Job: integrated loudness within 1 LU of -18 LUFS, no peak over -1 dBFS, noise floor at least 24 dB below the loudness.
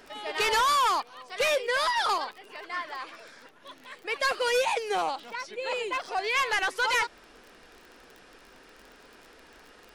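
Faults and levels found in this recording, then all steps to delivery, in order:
tick rate 30 per s; loudness -27.5 LUFS; peak level -19.0 dBFS; loudness target -18.0 LUFS
-> de-click; trim +9.5 dB

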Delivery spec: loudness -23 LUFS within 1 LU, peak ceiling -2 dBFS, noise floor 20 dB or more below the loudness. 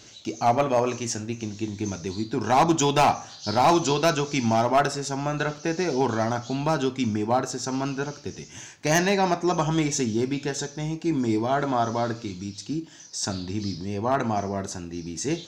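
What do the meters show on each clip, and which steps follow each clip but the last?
clipped samples 0.5%; clipping level -13.0 dBFS; loudness -25.0 LUFS; peak level -13.0 dBFS; loudness target -23.0 LUFS
-> clip repair -13 dBFS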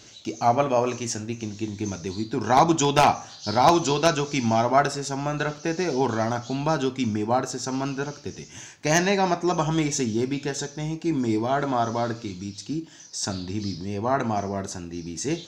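clipped samples 0.0%; loudness -24.5 LUFS; peak level -4.0 dBFS; loudness target -23.0 LUFS
-> trim +1.5 dB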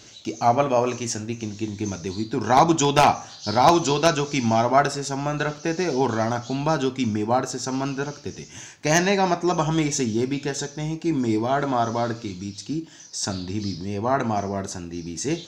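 loudness -23.0 LUFS; peak level -2.5 dBFS; noise floor -44 dBFS

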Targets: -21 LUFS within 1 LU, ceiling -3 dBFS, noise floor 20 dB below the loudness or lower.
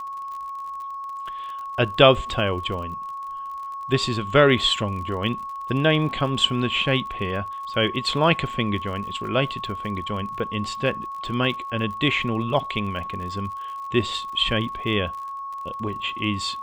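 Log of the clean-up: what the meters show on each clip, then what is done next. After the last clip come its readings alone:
tick rate 47 per s; steady tone 1.1 kHz; tone level -30 dBFS; loudness -24.0 LUFS; peak level -1.5 dBFS; loudness target -21.0 LUFS
-> de-click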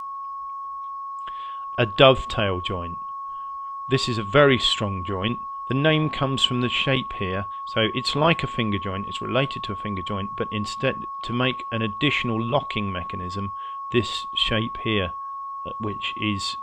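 tick rate 0.060 per s; steady tone 1.1 kHz; tone level -30 dBFS
-> band-stop 1.1 kHz, Q 30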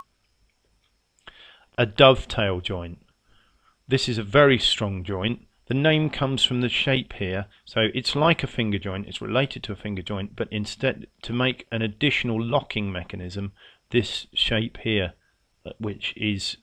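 steady tone not found; loudness -24.0 LUFS; peak level -2.0 dBFS; loudness target -21.0 LUFS
-> trim +3 dB; peak limiter -3 dBFS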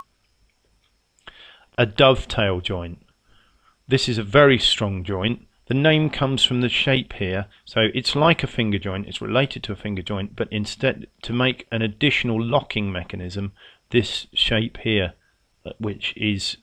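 loudness -21.5 LUFS; peak level -3.0 dBFS; noise floor -66 dBFS

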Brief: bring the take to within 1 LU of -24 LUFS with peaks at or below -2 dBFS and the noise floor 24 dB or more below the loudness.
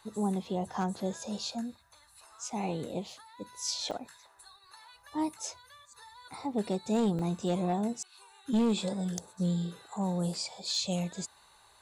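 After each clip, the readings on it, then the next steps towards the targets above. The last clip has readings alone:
clipped samples 0.6%; clipping level -22.5 dBFS; dropouts 3; longest dropout 3.1 ms; loudness -33.5 LUFS; peak level -22.5 dBFS; loudness target -24.0 LUFS
-> clip repair -22.5 dBFS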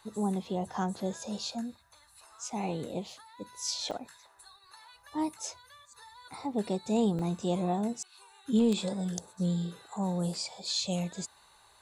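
clipped samples 0.0%; dropouts 3; longest dropout 3.1 ms
-> interpolate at 2.84/3.91/7.19 s, 3.1 ms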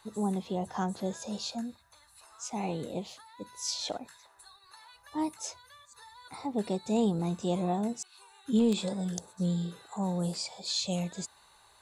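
dropouts 0; loudness -33.0 LUFS; peak level -13.5 dBFS; loudness target -24.0 LUFS
-> trim +9 dB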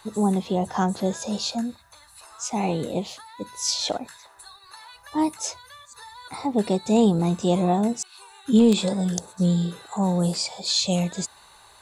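loudness -24.0 LUFS; peak level -4.5 dBFS; noise floor -52 dBFS

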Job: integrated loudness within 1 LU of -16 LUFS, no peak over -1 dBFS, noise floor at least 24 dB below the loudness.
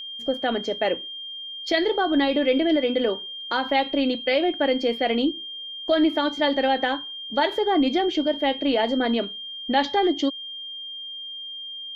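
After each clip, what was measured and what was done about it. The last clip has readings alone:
steady tone 3.2 kHz; tone level -33 dBFS; loudness -24.0 LUFS; peak level -10.0 dBFS; loudness target -16.0 LUFS
-> band-stop 3.2 kHz, Q 30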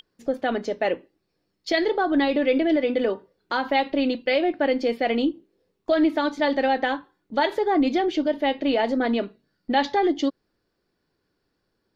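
steady tone not found; loudness -23.5 LUFS; peak level -10.0 dBFS; loudness target -16.0 LUFS
-> trim +7.5 dB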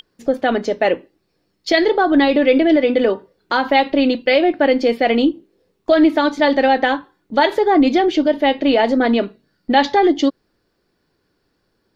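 loudness -16.0 LUFS; peak level -2.5 dBFS; noise floor -68 dBFS

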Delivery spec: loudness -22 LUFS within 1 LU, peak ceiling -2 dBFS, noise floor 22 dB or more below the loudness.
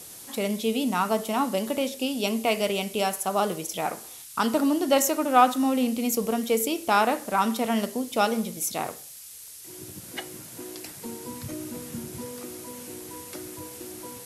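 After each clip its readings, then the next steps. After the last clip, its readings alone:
noise floor -44 dBFS; noise floor target -48 dBFS; loudness -26.0 LUFS; peak level -6.0 dBFS; loudness target -22.0 LUFS
-> noise reduction 6 dB, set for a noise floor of -44 dBFS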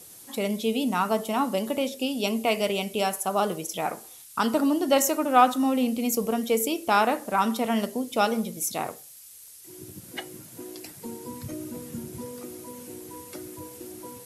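noise floor -48 dBFS; loudness -25.5 LUFS; peak level -6.0 dBFS; loudness target -22.0 LUFS
-> trim +3.5 dB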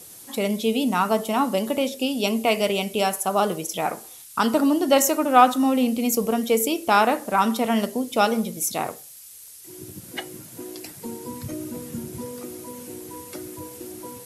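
loudness -22.0 LUFS; peak level -2.5 dBFS; noise floor -44 dBFS

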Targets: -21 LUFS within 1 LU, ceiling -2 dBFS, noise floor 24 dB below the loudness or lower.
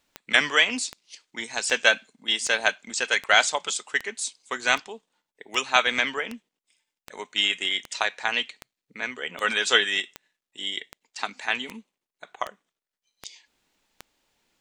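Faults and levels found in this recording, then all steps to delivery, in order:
clicks found 19; loudness -24.5 LUFS; peak level -2.0 dBFS; loudness target -21.0 LUFS
-> de-click; trim +3.5 dB; peak limiter -2 dBFS

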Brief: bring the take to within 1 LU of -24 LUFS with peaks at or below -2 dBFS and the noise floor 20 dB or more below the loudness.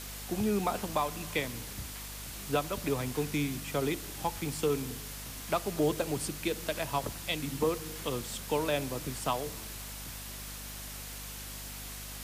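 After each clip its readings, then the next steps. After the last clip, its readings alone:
hum 50 Hz; highest harmonic 250 Hz; hum level -45 dBFS; noise floor -43 dBFS; noise floor target -54 dBFS; loudness -34.0 LUFS; peak level -17.5 dBFS; loudness target -24.0 LUFS
-> hum notches 50/100/150/200/250 Hz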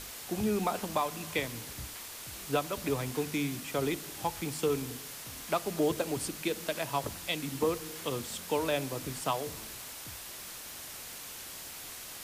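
hum not found; noise floor -45 dBFS; noise floor target -55 dBFS
-> noise print and reduce 10 dB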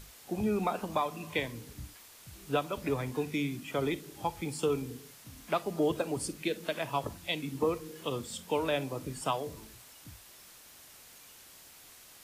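noise floor -55 dBFS; loudness -34.0 LUFS; peak level -18.0 dBFS; loudness target -24.0 LUFS
-> trim +10 dB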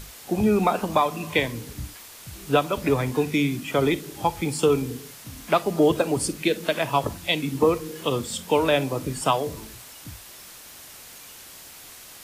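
loudness -24.0 LUFS; peak level -8.0 dBFS; noise floor -45 dBFS

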